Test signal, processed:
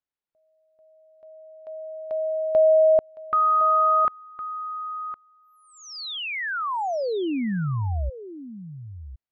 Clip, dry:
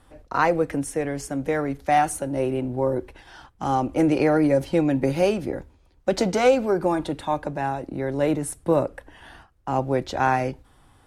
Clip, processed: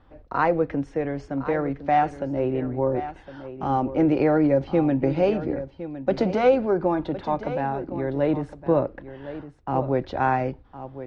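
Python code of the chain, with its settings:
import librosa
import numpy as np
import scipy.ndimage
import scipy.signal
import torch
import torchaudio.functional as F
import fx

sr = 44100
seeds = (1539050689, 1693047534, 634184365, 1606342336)

y = scipy.signal.sosfilt(scipy.signal.butter(4, 4900.0, 'lowpass', fs=sr, output='sos'), x)
y = fx.high_shelf(y, sr, hz=2700.0, db=-11.0)
y = y + 10.0 ** (-13.0 / 20.0) * np.pad(y, (int(1061 * sr / 1000.0), 0))[:len(y)]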